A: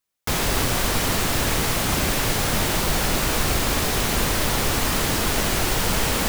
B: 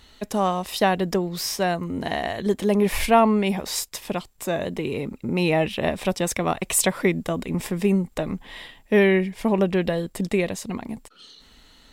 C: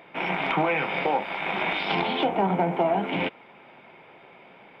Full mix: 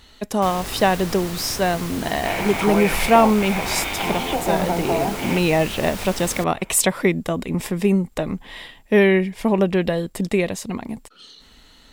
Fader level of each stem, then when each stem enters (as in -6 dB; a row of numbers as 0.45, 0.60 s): -10.5, +2.5, +0.5 dB; 0.15, 0.00, 2.10 s